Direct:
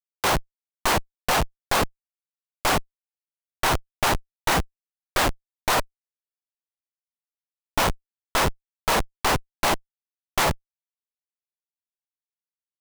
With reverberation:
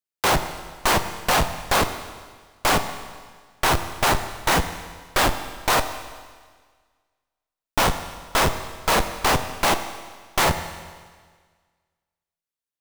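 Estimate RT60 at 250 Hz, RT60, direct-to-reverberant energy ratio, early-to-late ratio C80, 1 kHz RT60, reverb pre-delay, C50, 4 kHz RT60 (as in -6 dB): 1.6 s, 1.6 s, 9.0 dB, 11.5 dB, 1.6 s, 24 ms, 10.5 dB, 1.6 s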